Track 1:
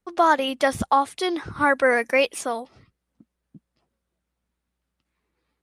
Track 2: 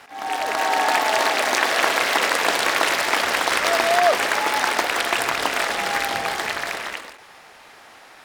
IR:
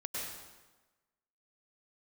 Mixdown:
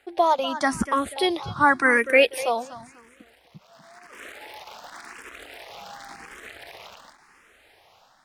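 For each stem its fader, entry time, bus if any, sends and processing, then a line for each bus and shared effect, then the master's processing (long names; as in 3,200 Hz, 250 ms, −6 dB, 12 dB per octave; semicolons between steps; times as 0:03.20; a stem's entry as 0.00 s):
+0.5 dB, 0.00 s, no send, echo send −15.5 dB, no processing
−12.5 dB, 0.00 s, no send, no echo send, low-shelf EQ 87 Hz +10.5 dB; downward compressor 5 to 1, threshold −25 dBFS, peak gain reduction 11.5 dB; brickwall limiter −20.5 dBFS, peak gain reduction 10.5 dB; automatic ducking −16 dB, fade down 0.25 s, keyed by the first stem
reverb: not used
echo: repeating echo 244 ms, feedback 31%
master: automatic gain control gain up to 5 dB; frequency shifter mixed with the dry sound +0.92 Hz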